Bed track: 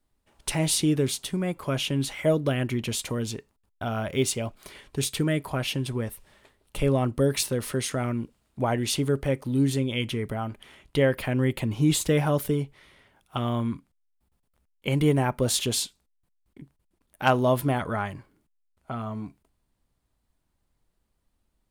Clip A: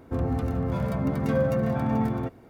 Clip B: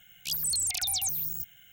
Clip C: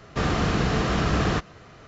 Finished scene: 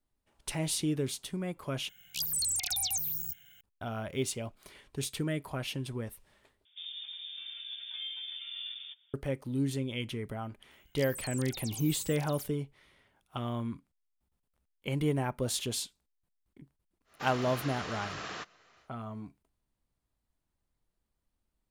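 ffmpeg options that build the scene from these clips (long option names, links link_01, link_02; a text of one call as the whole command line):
ffmpeg -i bed.wav -i cue0.wav -i cue1.wav -i cue2.wav -filter_complex "[2:a]asplit=2[link_01][link_02];[0:a]volume=-8dB[link_03];[1:a]lowpass=frequency=3100:width_type=q:width=0.5098,lowpass=frequency=3100:width_type=q:width=0.6013,lowpass=frequency=3100:width_type=q:width=0.9,lowpass=frequency=3100:width_type=q:width=2.563,afreqshift=-3700[link_04];[link_02]aecho=1:1:746:0.562[link_05];[3:a]highpass=frequency=1300:poles=1[link_06];[link_03]asplit=3[link_07][link_08][link_09];[link_07]atrim=end=1.894[link_10];[link_01]atrim=end=1.72,asetpts=PTS-STARTPTS,volume=-2.5dB[link_11];[link_08]atrim=start=3.606:end=6.654[link_12];[link_04]atrim=end=2.49,asetpts=PTS-STARTPTS,volume=-17dB[link_13];[link_09]atrim=start=9.136[link_14];[link_05]atrim=end=1.72,asetpts=PTS-STARTPTS,volume=-14dB,afade=type=in:duration=0.004:curve=hsin,afade=type=out:start_time=1.716:duration=0.004:curve=hsin,adelay=10710[link_15];[link_06]atrim=end=1.87,asetpts=PTS-STARTPTS,volume=-9.5dB,afade=type=in:duration=0.1,afade=type=out:start_time=1.77:duration=0.1,adelay=17040[link_16];[link_10][link_11]acrossfade=duration=0.004:curve1=hsin:curve2=hsin[link_17];[link_17][link_12]acrossfade=duration=0.004:curve1=hsin:curve2=hsin[link_18];[link_18][link_13]acrossfade=duration=0.004:curve1=hsin:curve2=hsin[link_19];[link_19][link_14]acrossfade=duration=0.004:curve1=hsin:curve2=hsin[link_20];[link_20][link_15][link_16]amix=inputs=3:normalize=0" out.wav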